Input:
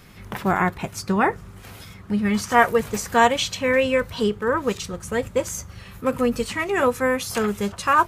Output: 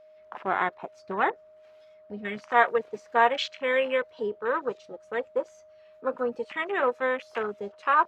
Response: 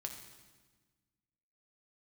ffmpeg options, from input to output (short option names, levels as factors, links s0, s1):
-filter_complex "[0:a]acrossover=split=330 5500:gain=0.0891 1 0.0708[s0][s1][s2];[s0][s1][s2]amix=inputs=3:normalize=0,afwtdn=0.0282,aeval=exprs='val(0)+0.00447*sin(2*PI*620*n/s)':c=same,volume=0.631"